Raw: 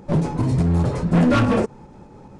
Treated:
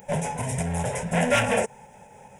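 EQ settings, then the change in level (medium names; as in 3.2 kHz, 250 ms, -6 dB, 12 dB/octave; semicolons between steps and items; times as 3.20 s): RIAA curve recording; static phaser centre 1.2 kHz, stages 6; +3.5 dB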